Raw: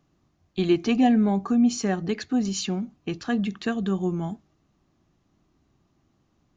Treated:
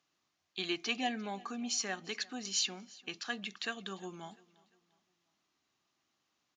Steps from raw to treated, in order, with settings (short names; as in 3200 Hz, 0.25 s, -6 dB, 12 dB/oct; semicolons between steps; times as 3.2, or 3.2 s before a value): band-pass 4100 Hz, Q 0.62; on a send: feedback echo 0.348 s, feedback 40%, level -23 dB